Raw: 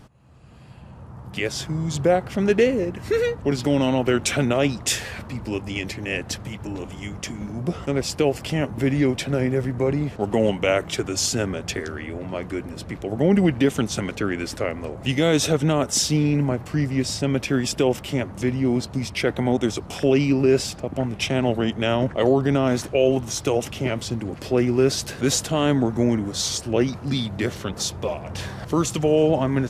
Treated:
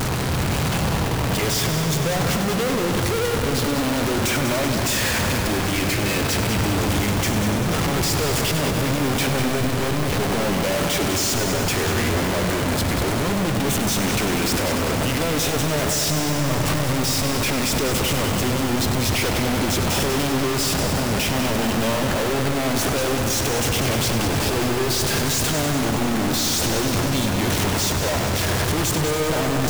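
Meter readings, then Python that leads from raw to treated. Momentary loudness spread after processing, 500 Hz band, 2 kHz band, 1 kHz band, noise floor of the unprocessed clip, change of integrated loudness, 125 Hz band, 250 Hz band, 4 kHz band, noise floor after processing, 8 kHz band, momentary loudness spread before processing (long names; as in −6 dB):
2 LU, −1.5 dB, +6.0 dB, +6.0 dB, −39 dBFS, +2.0 dB, +3.0 dB, 0.0 dB, +6.0 dB, −22 dBFS, +5.5 dB, 11 LU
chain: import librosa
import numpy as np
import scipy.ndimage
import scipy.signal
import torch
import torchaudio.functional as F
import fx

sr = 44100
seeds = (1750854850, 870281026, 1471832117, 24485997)

y = np.sign(x) * np.sqrt(np.mean(np.square(x)))
y = fx.echo_heads(y, sr, ms=97, heads='first and second', feedback_pct=69, wet_db=-10.5)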